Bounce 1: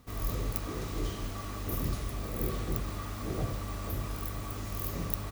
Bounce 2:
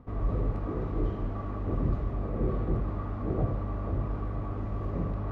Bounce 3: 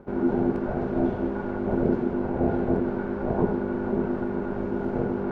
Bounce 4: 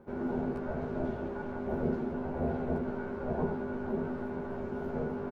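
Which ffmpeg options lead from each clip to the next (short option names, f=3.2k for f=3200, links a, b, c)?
-af "lowpass=1k,areverse,acompressor=mode=upward:threshold=-36dB:ratio=2.5,areverse,volume=5dB"
-af "aeval=exprs='val(0)*sin(2*PI*300*n/s)':c=same,volume=7dB"
-filter_complex "[0:a]crystalizer=i=1:c=0,asplit=2[a][b];[b]adelay=13,volume=-2dB[c];[a][c]amix=inputs=2:normalize=0,volume=-9dB"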